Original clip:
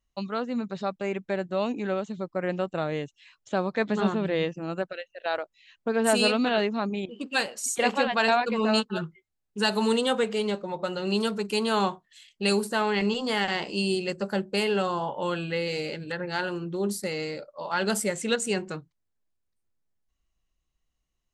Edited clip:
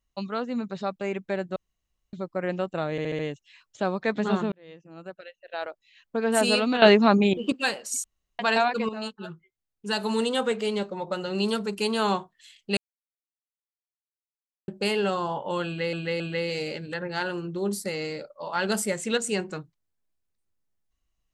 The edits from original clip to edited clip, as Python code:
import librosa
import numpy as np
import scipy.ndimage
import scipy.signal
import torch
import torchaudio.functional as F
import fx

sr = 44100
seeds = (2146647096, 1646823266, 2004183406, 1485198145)

y = fx.edit(x, sr, fx.room_tone_fill(start_s=1.56, length_s=0.57),
    fx.stutter(start_s=2.91, slice_s=0.07, count=5),
    fx.fade_in_span(start_s=4.24, length_s=1.76),
    fx.clip_gain(start_s=6.54, length_s=0.7, db=10.0),
    fx.room_tone_fill(start_s=7.76, length_s=0.35),
    fx.fade_in_from(start_s=8.61, length_s=1.72, floor_db=-12.5),
    fx.silence(start_s=12.49, length_s=1.91),
    fx.repeat(start_s=15.38, length_s=0.27, count=3), tone=tone)